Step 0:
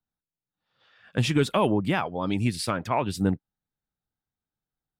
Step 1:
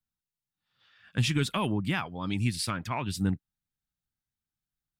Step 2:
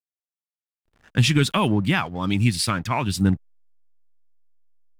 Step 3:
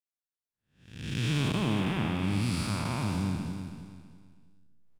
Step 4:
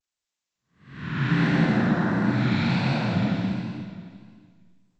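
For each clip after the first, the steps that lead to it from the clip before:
peaking EQ 540 Hz -12.5 dB 1.8 oct
hysteresis with a dead band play -49 dBFS; trim +8.5 dB
spectral blur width 382 ms; feedback delay 325 ms, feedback 32%, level -8 dB; trim -4.5 dB
frequency axis rescaled in octaves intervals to 77%; vibrato 1.5 Hz 97 cents; gated-style reverb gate 260 ms rising, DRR 1 dB; trim +6 dB

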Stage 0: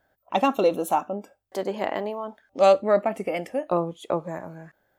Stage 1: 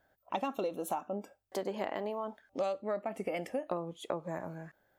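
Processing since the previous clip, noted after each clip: compression 10:1, threshold -28 dBFS, peak gain reduction 16 dB; trim -3 dB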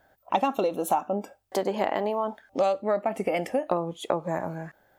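peaking EQ 810 Hz +3.5 dB 0.49 oct; trim +8.5 dB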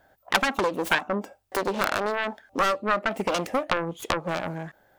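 self-modulated delay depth 0.98 ms; trim +2 dB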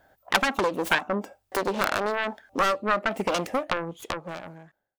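fade out at the end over 1.62 s

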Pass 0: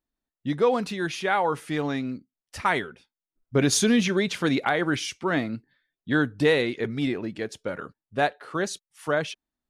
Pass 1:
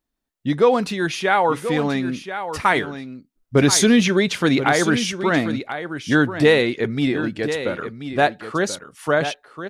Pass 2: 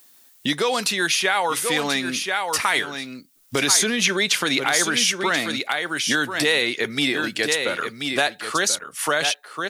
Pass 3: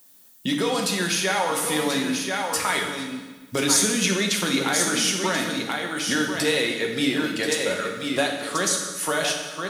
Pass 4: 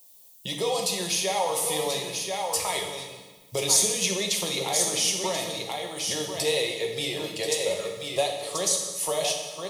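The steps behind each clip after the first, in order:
delay 1033 ms -10.5 dB; trim +6 dB
peak limiter -10.5 dBFS, peak gain reduction 6 dB; tilt EQ +4 dB/octave; three bands compressed up and down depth 70%
peaking EQ 2.3 kHz -5.5 dB 2.8 oct; reverberation RT60 1.3 s, pre-delay 3 ms, DRR 1 dB; trim -1.5 dB
static phaser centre 620 Hz, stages 4

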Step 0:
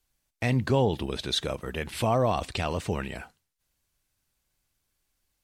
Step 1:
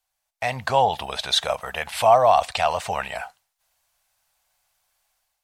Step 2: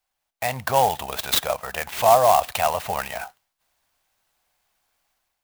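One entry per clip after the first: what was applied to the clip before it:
resonant low shelf 490 Hz -13 dB, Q 3; level rider gain up to 9 dB; trim -1.5 dB
sampling jitter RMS 0.041 ms

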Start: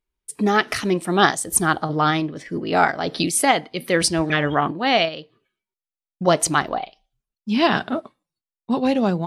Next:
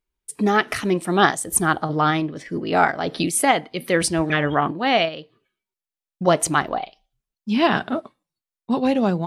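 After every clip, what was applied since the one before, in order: dynamic bell 4.9 kHz, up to -6 dB, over -39 dBFS, Q 1.5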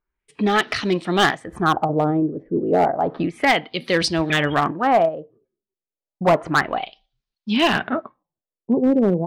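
LFO low-pass sine 0.31 Hz 410–4400 Hz; overload inside the chain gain 10.5 dB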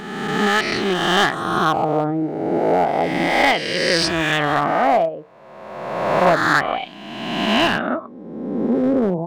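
reverse spectral sustain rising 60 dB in 1.58 s; trim -2.5 dB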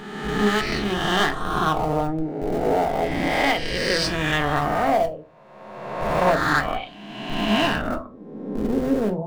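in parallel at -10.5 dB: Schmitt trigger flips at -16 dBFS; on the sum: reverberation RT60 0.30 s, pre-delay 4 ms, DRR 5 dB; trim -6 dB

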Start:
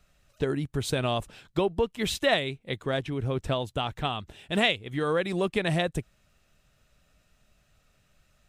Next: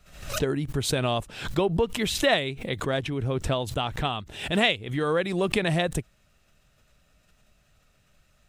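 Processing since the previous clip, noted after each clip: swell ahead of each attack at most 87 dB/s; trim +1.5 dB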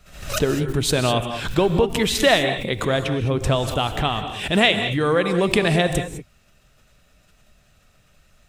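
gated-style reverb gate 230 ms rising, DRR 7.5 dB; trim +5.5 dB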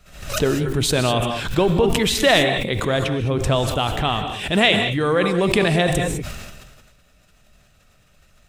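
decay stretcher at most 37 dB/s

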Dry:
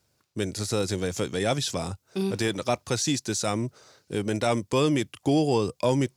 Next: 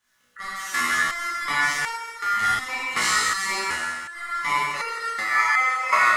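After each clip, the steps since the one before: Schroeder reverb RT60 1.7 s, combs from 28 ms, DRR -8.5 dB; ring modulator 1.6 kHz; resonator arpeggio 2.7 Hz 61–460 Hz; trim +7 dB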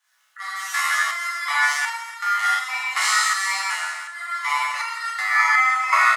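steep high-pass 690 Hz 48 dB/octave; on a send: multi-tap echo 46/290 ms -9/-19 dB; on the sum: trim +1.5 dB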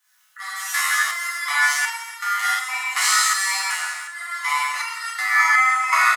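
high-pass 590 Hz 6 dB/octave; treble shelf 9.3 kHz +11.5 dB; comb 4 ms, depth 32%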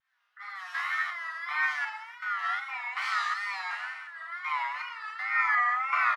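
wow and flutter 100 cents; distance through air 340 m; trim -6.5 dB

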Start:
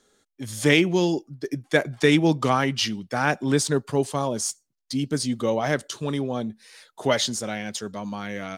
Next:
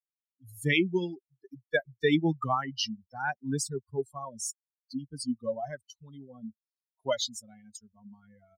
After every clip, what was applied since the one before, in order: expander on every frequency bin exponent 3; trim -2 dB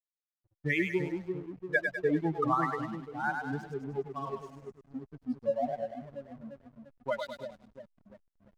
LFO low-pass saw up 1.1 Hz 600–2100 Hz; two-band feedback delay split 560 Hz, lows 344 ms, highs 101 ms, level -4.5 dB; hysteresis with a dead band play -41 dBFS; trim -5 dB

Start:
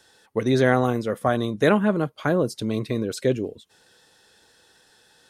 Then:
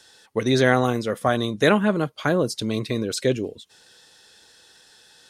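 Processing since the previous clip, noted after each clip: peaking EQ 5 kHz +7 dB 2.6 oct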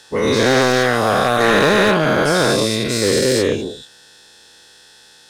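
every event in the spectrogram widened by 480 ms; hard clipper -9 dBFS, distortion -12 dB

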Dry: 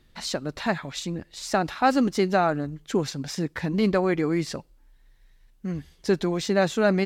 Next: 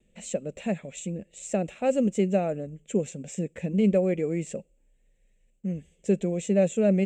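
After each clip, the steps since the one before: FFT filter 130 Hz 0 dB, 200 Hz +12 dB, 290 Hz 0 dB, 540 Hz +13 dB, 950 Hz -12 dB, 1.5 kHz -10 dB, 2.6 kHz +7 dB, 4.8 kHz -17 dB, 7.6 kHz +14 dB, 11 kHz -12 dB; gate with hold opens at -52 dBFS; trim -9 dB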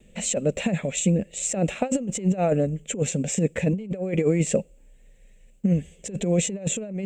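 compressor with a negative ratio -29 dBFS, ratio -0.5; peaking EQ 340 Hz -3.5 dB 0.25 oct; trim +7.5 dB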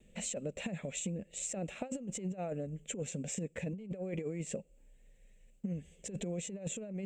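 compression, threshold -27 dBFS, peak gain reduction 11 dB; trim -8.5 dB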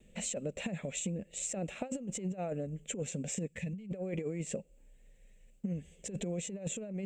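time-frequency box 3.48–3.90 s, 230–1700 Hz -9 dB; trim +1.5 dB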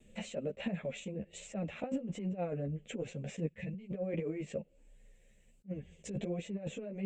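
chorus voices 2, 1.3 Hz, delay 12 ms, depth 3 ms; low-pass that closes with the level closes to 3 kHz, closed at -40 dBFS; attacks held to a fixed rise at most 440 dB/s; trim +3.5 dB

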